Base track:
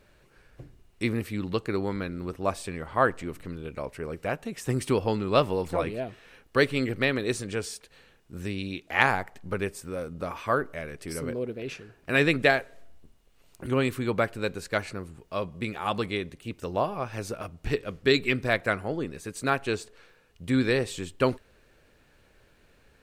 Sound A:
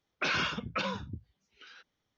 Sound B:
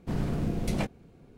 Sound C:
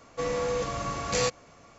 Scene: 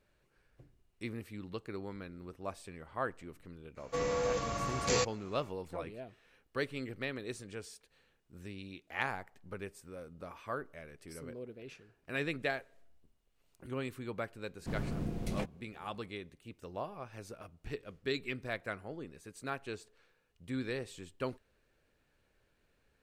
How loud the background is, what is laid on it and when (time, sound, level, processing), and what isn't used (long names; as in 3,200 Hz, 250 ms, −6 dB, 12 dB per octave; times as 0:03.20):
base track −13.5 dB
0:03.75: mix in C −4 dB, fades 0.05 s
0:14.59: mix in B −7.5 dB
not used: A